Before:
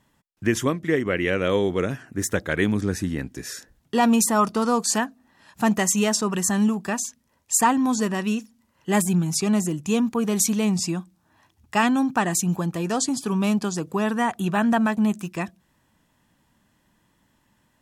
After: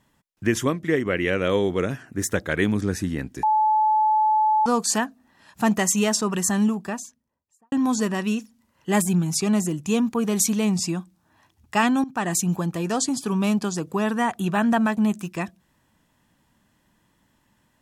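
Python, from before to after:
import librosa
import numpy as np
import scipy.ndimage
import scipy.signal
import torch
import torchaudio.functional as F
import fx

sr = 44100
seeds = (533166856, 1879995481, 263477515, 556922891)

y = fx.studio_fade_out(x, sr, start_s=6.5, length_s=1.22)
y = fx.edit(y, sr, fx.bleep(start_s=3.43, length_s=1.23, hz=863.0, db=-16.0),
    fx.fade_in_from(start_s=12.04, length_s=0.28, floor_db=-17.0), tone=tone)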